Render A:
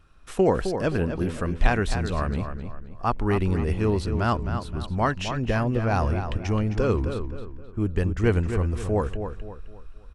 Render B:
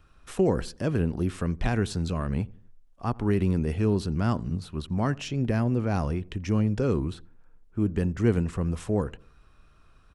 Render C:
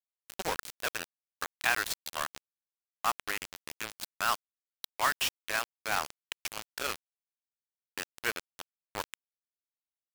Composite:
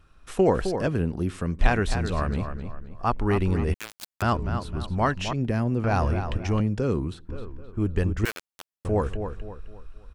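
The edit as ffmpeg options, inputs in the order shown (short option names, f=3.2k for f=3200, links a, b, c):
-filter_complex "[1:a]asplit=3[a][b][c];[2:a]asplit=2[d][e];[0:a]asplit=6[f][g][h][i][j][k];[f]atrim=end=0.872[l];[a]atrim=start=0.868:end=1.592[m];[g]atrim=start=1.588:end=3.742[n];[d]atrim=start=3.738:end=4.222[o];[h]atrim=start=4.218:end=5.332[p];[b]atrim=start=5.328:end=5.842[q];[i]atrim=start=5.838:end=6.602[r];[c]atrim=start=6.598:end=7.292[s];[j]atrim=start=7.288:end=8.252[t];[e]atrim=start=8.248:end=8.852[u];[k]atrim=start=8.848[v];[l][m]acrossfade=d=0.004:c1=hsin:c2=hsin[w];[w][n]acrossfade=d=0.004:c1=hsin:c2=hsin[x];[x][o]acrossfade=d=0.004:c1=hsin:c2=hsin[y];[y][p]acrossfade=d=0.004:c1=hsin:c2=hsin[z];[z][q]acrossfade=d=0.004:c1=hsin:c2=hsin[aa];[aa][r]acrossfade=d=0.004:c1=hsin:c2=hsin[ab];[ab][s]acrossfade=d=0.004:c1=hsin:c2=hsin[ac];[ac][t]acrossfade=d=0.004:c1=hsin:c2=hsin[ad];[ad][u]acrossfade=d=0.004:c1=hsin:c2=hsin[ae];[ae][v]acrossfade=d=0.004:c1=hsin:c2=hsin"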